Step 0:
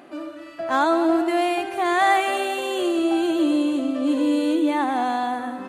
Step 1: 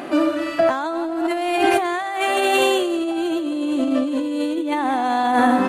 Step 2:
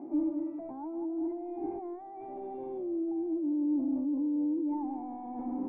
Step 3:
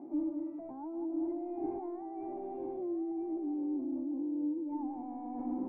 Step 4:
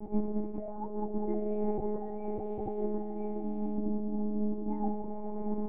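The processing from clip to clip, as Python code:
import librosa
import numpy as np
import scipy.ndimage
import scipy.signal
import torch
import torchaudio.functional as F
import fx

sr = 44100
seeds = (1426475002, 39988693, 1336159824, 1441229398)

y1 = fx.over_compress(x, sr, threshold_db=-29.0, ratio=-1.0)
y1 = y1 * 10.0 ** (8.5 / 20.0)
y2 = fx.low_shelf(y1, sr, hz=470.0, db=-6.0)
y2 = 10.0 ** (-22.5 / 20.0) * np.tanh(y2 / 10.0 ** (-22.5 / 20.0))
y2 = fx.formant_cascade(y2, sr, vowel='u')
y3 = fx.rider(y2, sr, range_db=4, speed_s=2.0)
y3 = fx.air_absorb(y3, sr, metres=220.0)
y3 = y3 + 10.0 ** (-8.5 / 20.0) * np.pad(y3, (int(998 * sr / 1000.0), 0))[:len(y3)]
y3 = y3 * 10.0 ** (-3.5 / 20.0)
y4 = fx.doubler(y3, sr, ms=14.0, db=-4.5)
y4 = fx.lpc_monotone(y4, sr, seeds[0], pitch_hz=210.0, order=8)
y4 = y4 * 10.0 ** (5.0 / 20.0)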